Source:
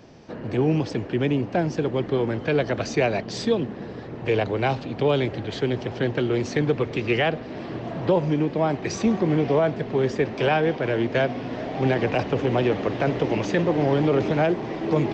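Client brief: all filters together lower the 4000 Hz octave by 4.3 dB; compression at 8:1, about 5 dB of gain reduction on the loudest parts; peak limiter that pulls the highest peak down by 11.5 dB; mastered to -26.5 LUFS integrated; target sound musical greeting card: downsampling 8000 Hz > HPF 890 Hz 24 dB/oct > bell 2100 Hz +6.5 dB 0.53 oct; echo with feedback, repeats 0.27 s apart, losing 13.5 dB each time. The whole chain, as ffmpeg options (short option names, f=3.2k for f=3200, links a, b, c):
-af "equalizer=f=4k:t=o:g=-8,acompressor=threshold=-21dB:ratio=8,alimiter=limit=-23dB:level=0:latency=1,aecho=1:1:270|540:0.211|0.0444,aresample=8000,aresample=44100,highpass=f=890:w=0.5412,highpass=f=890:w=1.3066,equalizer=f=2.1k:t=o:w=0.53:g=6.5,volume=14dB"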